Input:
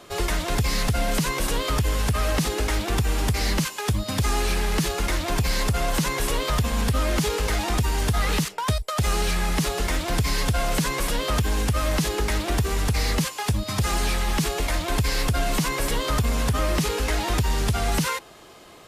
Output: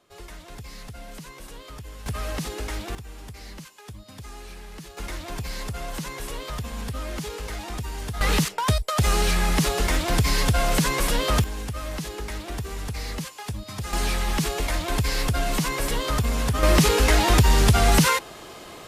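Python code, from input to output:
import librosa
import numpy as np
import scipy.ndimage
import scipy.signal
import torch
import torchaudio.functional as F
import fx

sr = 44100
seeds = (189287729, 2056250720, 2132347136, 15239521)

y = fx.gain(x, sr, db=fx.steps((0.0, -17.0), (2.06, -7.0), (2.95, -17.5), (4.97, -9.0), (8.21, 2.0), (11.44, -8.5), (13.93, -1.0), (16.63, 6.0)))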